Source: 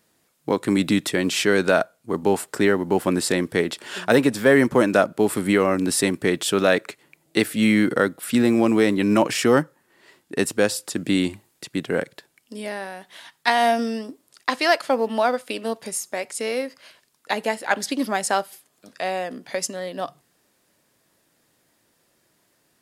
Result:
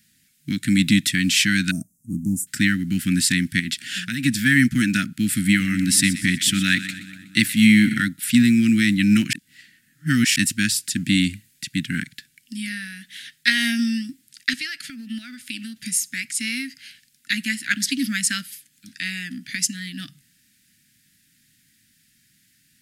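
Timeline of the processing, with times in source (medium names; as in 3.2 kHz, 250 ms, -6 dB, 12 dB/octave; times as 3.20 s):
1.71–2.47 s: inverse Chebyshev band-stop 1.4–4.2 kHz
3.59–4.24 s: compression, threshold -21 dBFS
5.33–8.02 s: two-band feedback delay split 1.3 kHz, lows 229 ms, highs 123 ms, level -14 dB
9.33–10.36 s: reverse
14.53–15.77 s: compression 3:1, threshold -31 dBFS
whole clip: inverse Chebyshev band-stop 390–1100 Hz, stop band 40 dB; trim +6 dB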